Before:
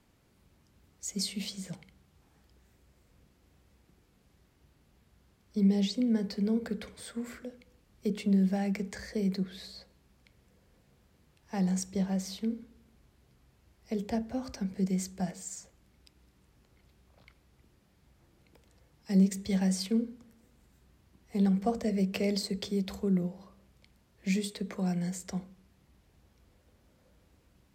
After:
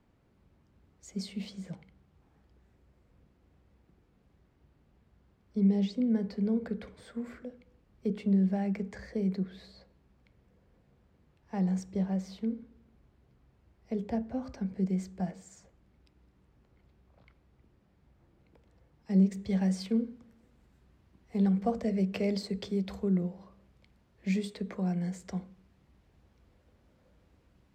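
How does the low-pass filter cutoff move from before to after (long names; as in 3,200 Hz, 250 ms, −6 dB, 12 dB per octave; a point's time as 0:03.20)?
low-pass filter 6 dB per octave
0:19.28 1,400 Hz
0:19.83 2,500 Hz
0:24.66 2,500 Hz
0:24.85 1,500 Hz
0:25.40 2,900 Hz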